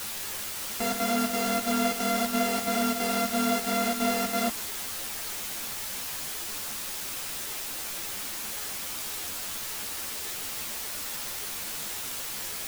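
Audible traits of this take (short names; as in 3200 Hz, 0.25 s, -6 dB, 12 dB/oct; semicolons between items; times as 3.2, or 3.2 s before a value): a buzz of ramps at a fixed pitch in blocks of 64 samples; chopped level 3 Hz, depth 65%, duty 75%; a quantiser's noise floor 6-bit, dither triangular; a shimmering, thickened sound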